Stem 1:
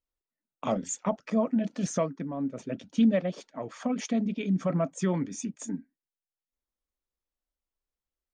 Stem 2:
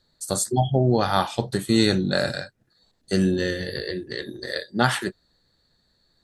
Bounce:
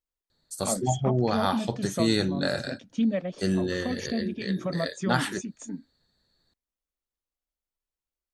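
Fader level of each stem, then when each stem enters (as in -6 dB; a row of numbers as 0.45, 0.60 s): -2.5, -5.0 dB; 0.00, 0.30 s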